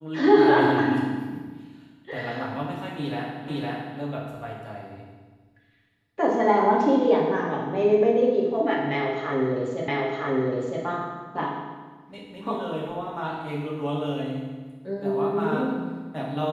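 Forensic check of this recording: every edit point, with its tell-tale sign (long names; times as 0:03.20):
0:03.48: the same again, the last 0.51 s
0:09.88: the same again, the last 0.96 s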